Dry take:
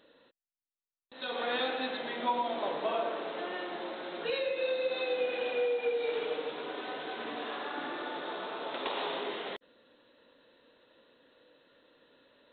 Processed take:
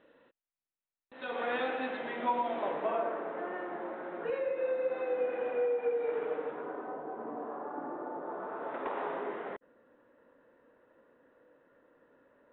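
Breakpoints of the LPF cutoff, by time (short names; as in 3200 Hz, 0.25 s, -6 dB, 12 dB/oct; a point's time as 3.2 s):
LPF 24 dB/oct
2.6 s 2600 Hz
3.26 s 1800 Hz
6.48 s 1800 Hz
7.03 s 1100 Hz
8.2 s 1100 Hz
8.71 s 1800 Hz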